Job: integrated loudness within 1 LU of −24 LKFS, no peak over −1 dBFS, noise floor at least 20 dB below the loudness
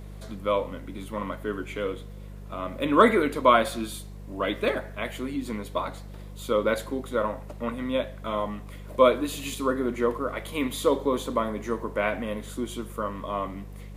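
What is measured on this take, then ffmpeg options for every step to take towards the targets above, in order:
mains hum 50 Hz; hum harmonics up to 200 Hz; level of the hum −38 dBFS; integrated loudness −27.5 LKFS; sample peak −3.5 dBFS; target loudness −24.0 LKFS
→ -af "bandreject=frequency=50:width_type=h:width=4,bandreject=frequency=100:width_type=h:width=4,bandreject=frequency=150:width_type=h:width=4,bandreject=frequency=200:width_type=h:width=4"
-af "volume=3.5dB,alimiter=limit=-1dB:level=0:latency=1"

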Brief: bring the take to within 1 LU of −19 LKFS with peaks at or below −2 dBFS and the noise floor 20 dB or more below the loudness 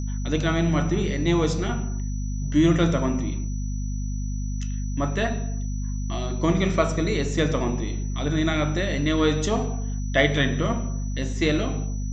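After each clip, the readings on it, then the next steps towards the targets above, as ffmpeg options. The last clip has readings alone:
mains hum 50 Hz; hum harmonics up to 250 Hz; level of the hum −25 dBFS; interfering tone 5,900 Hz; level of the tone −44 dBFS; integrated loudness −25.0 LKFS; sample peak −5.5 dBFS; target loudness −19.0 LKFS
→ -af "bandreject=frequency=50:width_type=h:width=4,bandreject=frequency=100:width_type=h:width=4,bandreject=frequency=150:width_type=h:width=4,bandreject=frequency=200:width_type=h:width=4,bandreject=frequency=250:width_type=h:width=4"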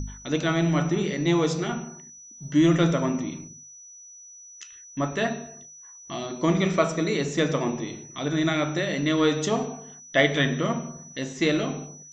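mains hum none found; interfering tone 5,900 Hz; level of the tone −44 dBFS
→ -af "bandreject=frequency=5900:width=30"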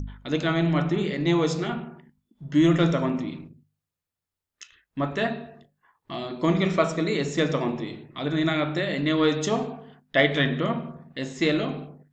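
interfering tone none found; integrated loudness −25.0 LKFS; sample peak −5.5 dBFS; target loudness −19.0 LKFS
→ -af "volume=6dB,alimiter=limit=-2dB:level=0:latency=1"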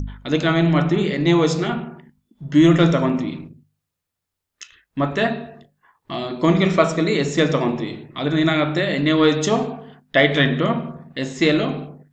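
integrated loudness −19.0 LKFS; sample peak −2.0 dBFS; background noise floor −81 dBFS

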